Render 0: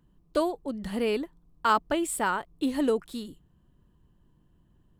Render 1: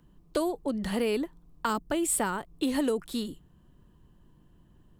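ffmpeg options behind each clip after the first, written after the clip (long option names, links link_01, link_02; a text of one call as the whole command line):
ffmpeg -i in.wav -filter_complex "[0:a]equalizer=frequency=75:width=0.62:gain=-2.5,acrossover=split=340|6200[link_01][link_02][link_03];[link_01]alimiter=level_in=9.5dB:limit=-24dB:level=0:latency=1,volume=-9.5dB[link_04];[link_02]acompressor=threshold=-34dB:ratio=6[link_05];[link_04][link_05][link_03]amix=inputs=3:normalize=0,volume=5.5dB" out.wav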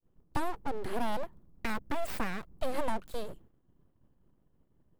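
ffmpeg -i in.wav -af "agate=range=-33dB:threshold=-50dB:ratio=3:detection=peak,equalizer=frequency=5000:width=0.31:gain=-11,aeval=exprs='abs(val(0))':channel_layout=same" out.wav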